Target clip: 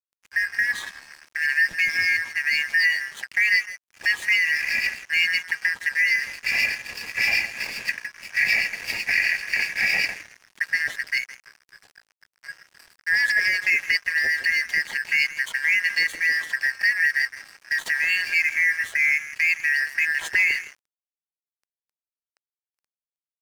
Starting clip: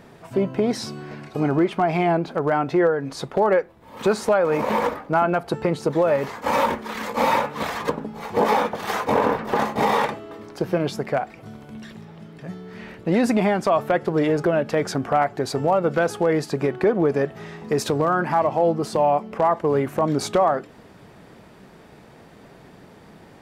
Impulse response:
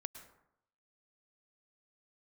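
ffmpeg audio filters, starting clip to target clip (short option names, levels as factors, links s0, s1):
-filter_complex "[0:a]afftfilt=real='real(if(lt(b,272),68*(eq(floor(b/68),0)*2+eq(floor(b/68),1)*0+eq(floor(b/68),2)*3+eq(floor(b/68),3)*1)+mod(b,68),b),0)':imag='imag(if(lt(b,272),68*(eq(floor(b/68),0)*2+eq(floor(b/68),1)*0+eq(floor(b/68),2)*3+eq(floor(b/68),3)*1)+mod(b,68),b),0)':win_size=2048:overlap=0.75,acrossover=split=2100[s0][s1];[s0]aeval=exprs='val(0)*(1-0.7/2+0.7/2*cos(2*PI*7.9*n/s))':c=same[s2];[s1]aeval=exprs='val(0)*(1-0.7/2-0.7/2*cos(2*PI*7.9*n/s))':c=same[s3];[s2][s3]amix=inputs=2:normalize=0,asplit=2[s4][s5];[s5]adelay=163,lowpass=f=1000:p=1,volume=0.501,asplit=2[s6][s7];[s7]adelay=163,lowpass=f=1000:p=1,volume=0.31,asplit=2[s8][s9];[s9]adelay=163,lowpass=f=1000:p=1,volume=0.31,asplit=2[s10][s11];[s11]adelay=163,lowpass=f=1000:p=1,volume=0.31[s12];[s6][s8][s10][s12]amix=inputs=4:normalize=0[s13];[s4][s13]amix=inputs=2:normalize=0,aeval=exprs='sgn(val(0))*max(abs(val(0))-0.0112,0)':c=same,volume=1.33"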